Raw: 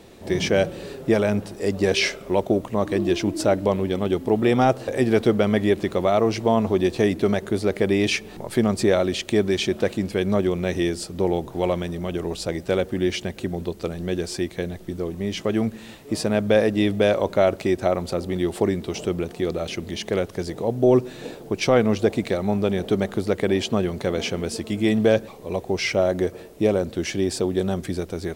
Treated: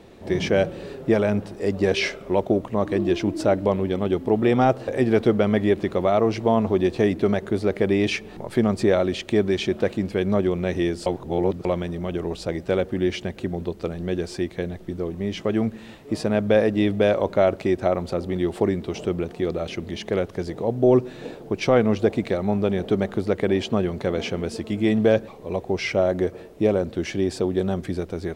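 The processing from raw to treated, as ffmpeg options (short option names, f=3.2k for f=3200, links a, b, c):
-filter_complex "[0:a]asplit=3[a][b][c];[a]atrim=end=11.062[d];[b]atrim=start=11.058:end=11.652,asetpts=PTS-STARTPTS,areverse[e];[c]atrim=start=11.648[f];[d][e]acrossfade=d=0.004:c1=hsin:c2=hsin[g];[g][f]acrossfade=d=0.004:c1=hsin:c2=hsin,highshelf=f=4.8k:g=-11"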